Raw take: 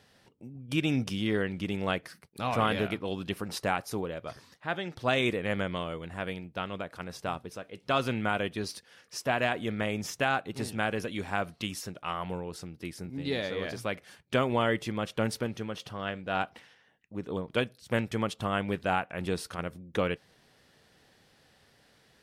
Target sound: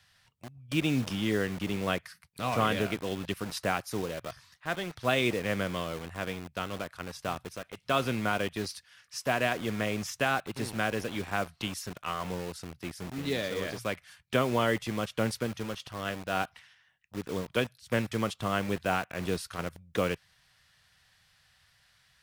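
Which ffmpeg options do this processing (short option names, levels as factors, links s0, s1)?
-filter_complex "[0:a]bandreject=f=850:w=12,acrossover=split=140|830|4800[s0][s1][s2][s3];[s1]acrusher=bits=6:mix=0:aa=0.000001[s4];[s0][s4][s2][s3]amix=inputs=4:normalize=0"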